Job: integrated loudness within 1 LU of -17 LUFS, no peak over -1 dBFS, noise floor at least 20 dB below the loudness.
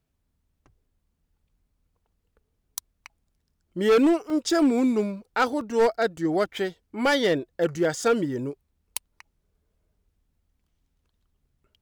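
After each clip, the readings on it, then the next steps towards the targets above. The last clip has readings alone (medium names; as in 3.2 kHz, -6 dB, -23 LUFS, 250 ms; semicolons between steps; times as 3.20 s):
clipped samples 1.0%; clipping level -15.0 dBFS; dropouts 2; longest dropout 1.5 ms; loudness -24.0 LUFS; peak level -15.0 dBFS; loudness target -17.0 LUFS
-> clip repair -15 dBFS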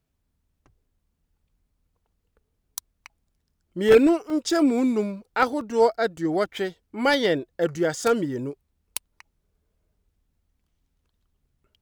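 clipped samples 0.0%; dropouts 2; longest dropout 1.5 ms
-> interpolate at 4.30/5.61 s, 1.5 ms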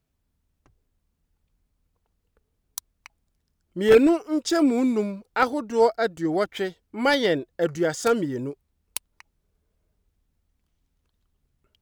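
dropouts 0; loudness -23.0 LUFS; peak level -6.0 dBFS; loudness target -17.0 LUFS
-> trim +6 dB; peak limiter -1 dBFS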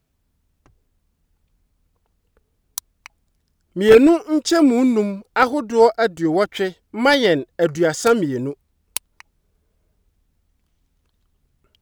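loudness -17.5 LUFS; peak level -1.0 dBFS; noise floor -70 dBFS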